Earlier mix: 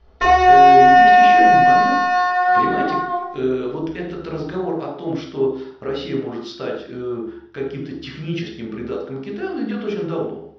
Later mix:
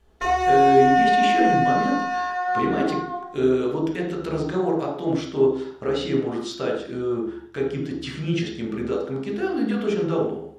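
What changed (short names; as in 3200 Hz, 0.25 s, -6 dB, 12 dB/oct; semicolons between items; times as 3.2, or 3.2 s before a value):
background -9.0 dB; master: remove elliptic low-pass 5400 Hz, stop band 80 dB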